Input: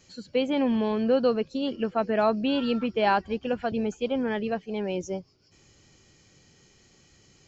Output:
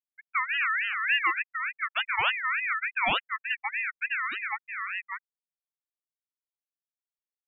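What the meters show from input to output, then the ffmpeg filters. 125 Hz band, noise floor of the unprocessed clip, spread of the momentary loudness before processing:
-15.5 dB, -60 dBFS, 7 LU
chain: -af "anlmdn=10,afftfilt=real='re*gte(hypot(re,im),0.178)':imag='im*gte(hypot(re,im),0.178)':win_size=1024:overlap=0.75,aeval=exprs='val(0)*sin(2*PI*1900*n/s+1900*0.2/3.4*sin(2*PI*3.4*n/s))':c=same"

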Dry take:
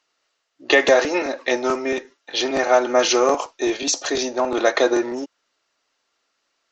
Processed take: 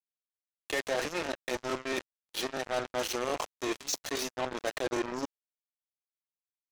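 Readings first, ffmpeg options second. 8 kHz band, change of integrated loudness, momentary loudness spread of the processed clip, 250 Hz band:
n/a, -14.0 dB, 4 LU, -13.5 dB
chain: -af "areverse,acompressor=threshold=-33dB:ratio=4,areverse,acrusher=bits=4:mix=0:aa=0.5"

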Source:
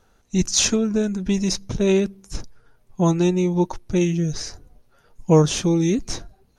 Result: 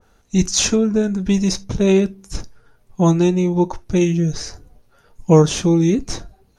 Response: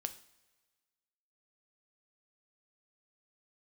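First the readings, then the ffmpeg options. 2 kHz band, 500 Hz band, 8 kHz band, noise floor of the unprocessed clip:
+2.0 dB, +3.5 dB, +1.0 dB, -60 dBFS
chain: -filter_complex "[0:a]asplit=2[a][b];[1:a]atrim=start_sample=2205,afade=t=out:st=0.2:d=0.01,atrim=end_sample=9261,asetrate=79380,aresample=44100[c];[b][c]afir=irnorm=-1:irlink=0,volume=7.5dB[d];[a][d]amix=inputs=2:normalize=0,adynamicequalizer=threshold=0.0224:dfrequency=2100:dqfactor=0.7:tfrequency=2100:tqfactor=0.7:attack=5:release=100:ratio=0.375:range=3:mode=cutabove:tftype=highshelf,volume=-3dB"

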